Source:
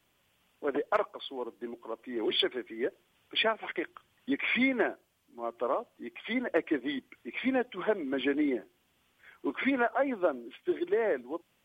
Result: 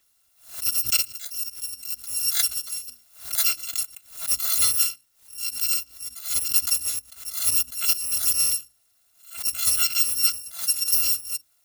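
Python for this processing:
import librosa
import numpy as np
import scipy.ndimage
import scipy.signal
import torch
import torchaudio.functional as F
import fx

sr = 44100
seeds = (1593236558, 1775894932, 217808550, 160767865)

y = fx.bit_reversed(x, sr, seeds[0], block=256)
y = fx.low_shelf(y, sr, hz=140.0, db=-3.5)
y = fx.hum_notches(y, sr, base_hz=60, count=5)
y = fx.over_compress(y, sr, threshold_db=-41.0, ratio=-1.0, at=(2.72, 3.38))
y = fx.high_shelf(y, sr, hz=4100.0, db=7.5)
y = fx.notch(y, sr, hz=810.0, q=27.0)
y = fx.pre_swell(y, sr, db_per_s=130.0)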